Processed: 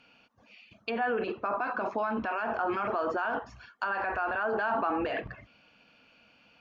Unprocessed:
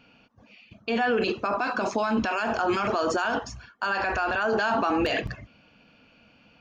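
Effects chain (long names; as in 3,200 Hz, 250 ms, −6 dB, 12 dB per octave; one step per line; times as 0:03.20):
treble cut that deepens with the level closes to 1,600 Hz, closed at −26 dBFS
low-shelf EQ 390 Hz −9.5 dB
level −1.5 dB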